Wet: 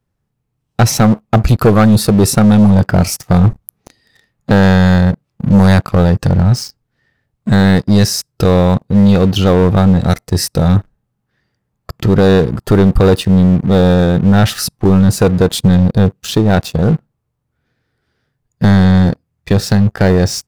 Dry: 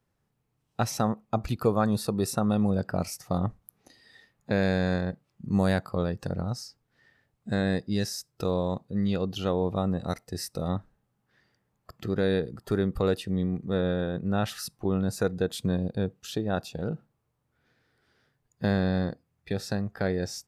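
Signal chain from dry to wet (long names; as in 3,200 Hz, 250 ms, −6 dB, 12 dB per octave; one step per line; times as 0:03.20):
low-shelf EQ 190 Hz +8.5 dB
leveller curve on the samples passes 3
level +6.5 dB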